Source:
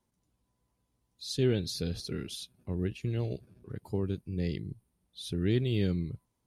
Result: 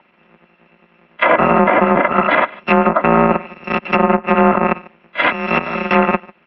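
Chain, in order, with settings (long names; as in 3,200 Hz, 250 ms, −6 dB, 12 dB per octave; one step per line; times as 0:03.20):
samples in bit-reversed order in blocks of 256 samples
0:05.32–0:05.91: noise gate −23 dBFS, range −16 dB
dynamic equaliser 990 Hz, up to +6 dB, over −58 dBFS, Q 0.95
in parallel at −7 dB: wrap-around overflow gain 27.5 dB
on the sum: slap from a distant wall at 25 metres, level −24 dB
single-sideband voice off tune −60 Hz 230–2,700 Hz
treble cut that deepens with the level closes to 1,200 Hz, closed at −40.5 dBFS
boost into a limiter +36 dB
level −1 dB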